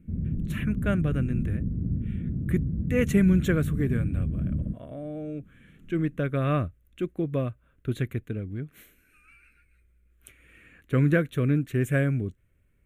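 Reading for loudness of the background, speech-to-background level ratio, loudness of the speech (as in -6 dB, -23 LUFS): -30.5 LUFS, 2.5 dB, -28.0 LUFS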